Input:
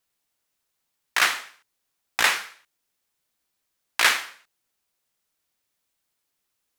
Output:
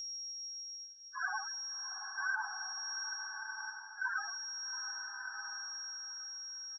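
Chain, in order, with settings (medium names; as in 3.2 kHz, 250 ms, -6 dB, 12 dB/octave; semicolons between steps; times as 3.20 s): frequency-domain pitch shifter -8.5 st; graphic EQ with 31 bands 800 Hz +4 dB, 1.6 kHz +9 dB, 5 kHz +6 dB; loudest bins only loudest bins 4; whistle 5.6 kHz -45 dBFS; reverse; compression, threshold -44 dBFS, peak gain reduction 21.5 dB; reverse; resonant low shelf 120 Hz +13 dB, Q 1.5; comb 4.6 ms, depth 41%; on a send: two-band feedback delay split 2.2 kHz, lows 681 ms, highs 158 ms, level -14 dB; on the sum: swelling reverb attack 1240 ms, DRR 4 dB; trim +7 dB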